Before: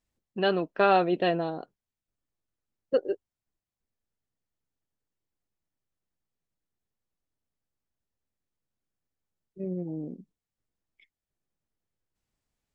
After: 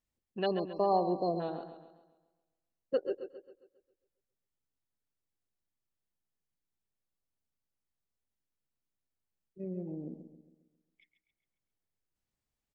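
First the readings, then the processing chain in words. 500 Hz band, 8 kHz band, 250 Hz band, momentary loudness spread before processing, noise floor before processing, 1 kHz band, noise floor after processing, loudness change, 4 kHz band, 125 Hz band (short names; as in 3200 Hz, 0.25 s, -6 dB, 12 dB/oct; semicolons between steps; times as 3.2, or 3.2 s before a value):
-5.5 dB, n/a, -5.5 dB, 16 LU, under -85 dBFS, -6.0 dB, under -85 dBFS, -6.5 dB, -9.5 dB, -5.5 dB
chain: spectral delete 0.46–1.4, 1200–4100 Hz; feedback echo 0.12 s, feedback 48%, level -23 dB; warbling echo 0.135 s, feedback 46%, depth 51 cents, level -10 dB; gain -6 dB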